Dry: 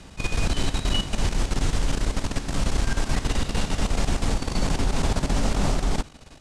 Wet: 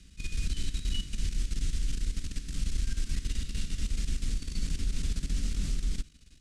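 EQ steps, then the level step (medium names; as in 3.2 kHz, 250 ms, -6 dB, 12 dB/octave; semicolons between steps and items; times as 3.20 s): amplifier tone stack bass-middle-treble 6-0-2; peaking EQ 110 Hz -8 dB 0.58 oct; peaking EQ 880 Hz -14 dB 0.9 oct; +6.5 dB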